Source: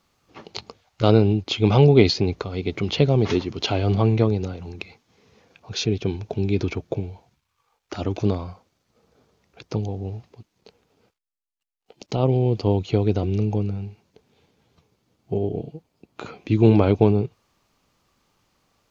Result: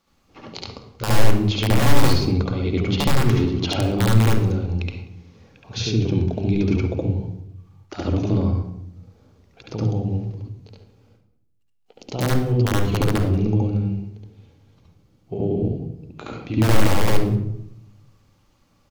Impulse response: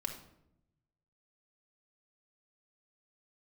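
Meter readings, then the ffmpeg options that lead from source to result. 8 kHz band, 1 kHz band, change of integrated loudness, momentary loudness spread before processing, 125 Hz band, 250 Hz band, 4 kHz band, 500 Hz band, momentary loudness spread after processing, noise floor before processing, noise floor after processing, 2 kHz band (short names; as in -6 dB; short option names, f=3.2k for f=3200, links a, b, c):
n/a, +2.5 dB, 0.0 dB, 21 LU, +2.0 dB, +0.5 dB, +1.0 dB, -4.0 dB, 17 LU, -76 dBFS, -62 dBFS, +5.0 dB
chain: -filter_complex "[0:a]aeval=exprs='(mod(2.66*val(0)+1,2)-1)/2.66':c=same,bandreject=f=50:t=h:w=6,bandreject=f=100:t=h:w=6,bandreject=f=150:t=h:w=6,bandreject=f=200:t=h:w=6,acompressor=threshold=-21dB:ratio=4,aecho=1:1:184:0.0668,asplit=2[a][b];[1:a]atrim=start_sample=2205,lowshelf=f=260:g=11,adelay=70[c];[b][c]afir=irnorm=-1:irlink=0,volume=2dB[d];[a][d]amix=inputs=2:normalize=0,volume=-3dB"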